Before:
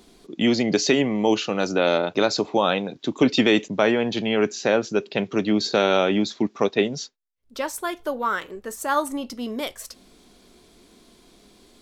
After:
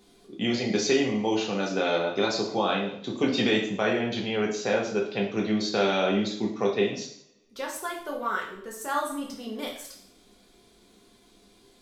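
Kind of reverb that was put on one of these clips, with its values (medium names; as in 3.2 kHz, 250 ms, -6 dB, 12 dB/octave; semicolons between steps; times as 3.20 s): two-slope reverb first 0.58 s, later 1.7 s, from -25 dB, DRR -2 dB; trim -8.5 dB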